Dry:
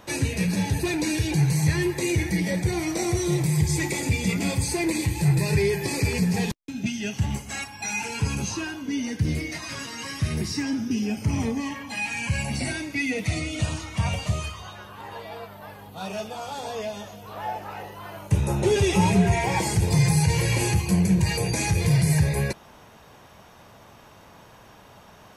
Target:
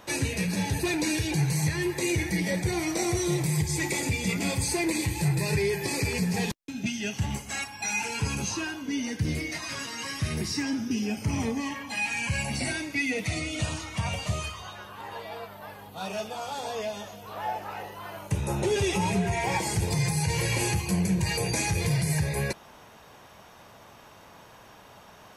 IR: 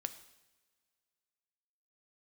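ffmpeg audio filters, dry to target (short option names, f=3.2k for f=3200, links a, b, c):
-af "lowshelf=f=290:g=-5,alimiter=limit=-16.5dB:level=0:latency=1:release=317"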